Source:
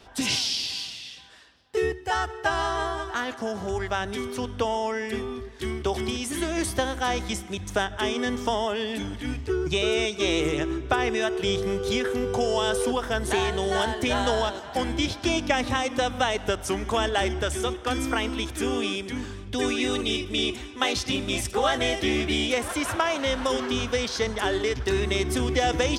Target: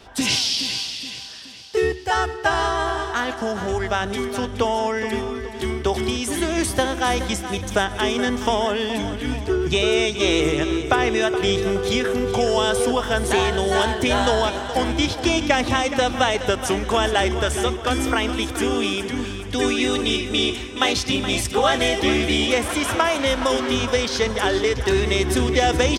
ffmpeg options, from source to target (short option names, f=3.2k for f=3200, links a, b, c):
-af "aecho=1:1:422|844|1266|1688|2110:0.266|0.125|0.0588|0.0276|0.013,volume=5dB"